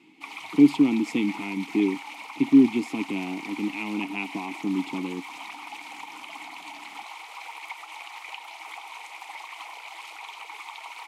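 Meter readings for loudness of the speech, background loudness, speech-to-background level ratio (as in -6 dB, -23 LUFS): -24.5 LUFS, -39.0 LUFS, 14.5 dB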